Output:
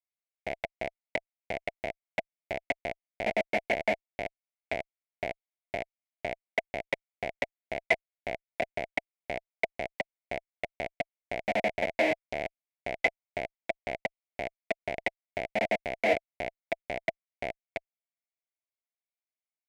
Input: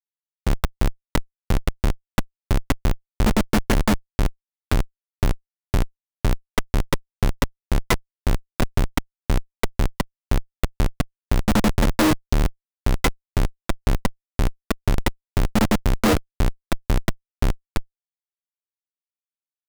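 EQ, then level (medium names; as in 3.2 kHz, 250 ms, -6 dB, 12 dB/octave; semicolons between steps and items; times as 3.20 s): two resonant band-passes 1.2 kHz, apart 1.7 oct; +5.0 dB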